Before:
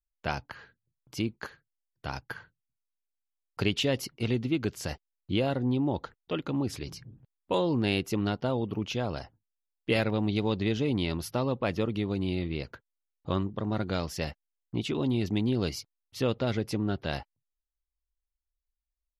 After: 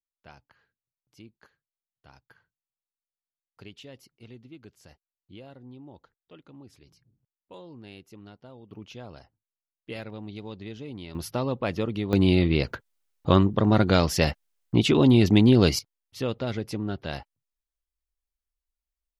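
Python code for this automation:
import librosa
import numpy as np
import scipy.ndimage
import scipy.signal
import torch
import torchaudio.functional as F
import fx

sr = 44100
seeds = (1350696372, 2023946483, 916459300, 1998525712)

y = fx.gain(x, sr, db=fx.steps((0.0, -18.5), (8.71, -11.0), (11.15, 1.0), (12.13, 10.5), (15.79, -1.0)))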